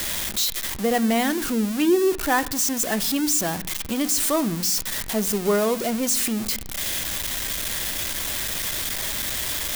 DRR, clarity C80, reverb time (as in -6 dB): 11.5 dB, 21.5 dB, 0.70 s